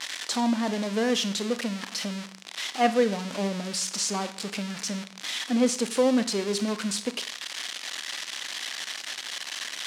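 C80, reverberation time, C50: 17.0 dB, 0.55 s, 14.0 dB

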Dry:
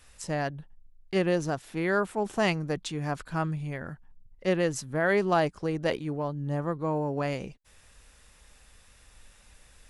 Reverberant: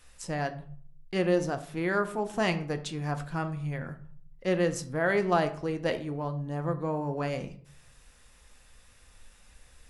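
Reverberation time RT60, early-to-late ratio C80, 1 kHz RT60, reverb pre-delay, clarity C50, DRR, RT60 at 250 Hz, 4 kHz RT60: 0.55 s, 17.5 dB, 0.50 s, 4 ms, 13.5 dB, 7.5 dB, 0.65 s, 0.35 s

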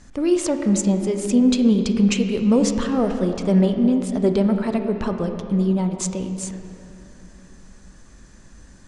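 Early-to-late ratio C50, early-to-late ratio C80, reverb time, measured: 6.5 dB, 7.5 dB, 2.8 s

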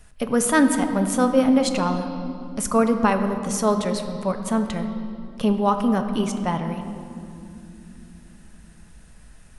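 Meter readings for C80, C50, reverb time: 9.0 dB, 8.0 dB, 2.9 s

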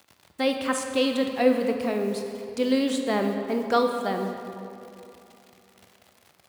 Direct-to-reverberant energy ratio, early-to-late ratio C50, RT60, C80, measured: 4.0 dB, 5.0 dB, 2.8 s, 6.0 dB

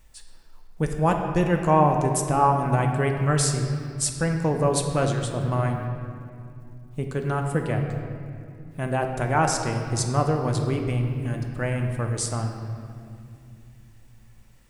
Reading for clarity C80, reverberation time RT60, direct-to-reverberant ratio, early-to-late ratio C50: 6.0 dB, 2.5 s, 3.0 dB, 5.0 dB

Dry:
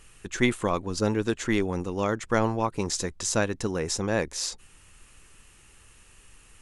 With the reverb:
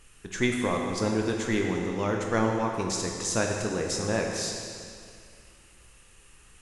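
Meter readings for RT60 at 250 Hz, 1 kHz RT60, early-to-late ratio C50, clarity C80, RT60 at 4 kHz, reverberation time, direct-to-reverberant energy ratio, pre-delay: 2.3 s, 2.3 s, 2.0 dB, 3.5 dB, 2.1 s, 2.3 s, 1.0 dB, 17 ms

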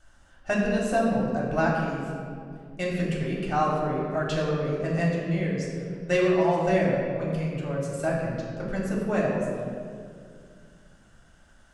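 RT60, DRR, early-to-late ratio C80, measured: 2.2 s, -5.0 dB, 2.0 dB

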